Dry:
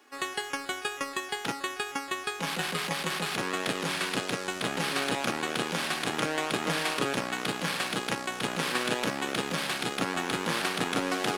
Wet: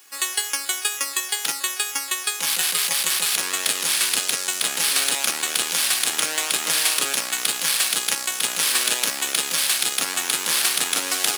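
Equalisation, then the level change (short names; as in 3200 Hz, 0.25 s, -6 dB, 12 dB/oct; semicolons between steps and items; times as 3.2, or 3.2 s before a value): RIAA curve recording; high shelf 2100 Hz +8.5 dB; -1.5 dB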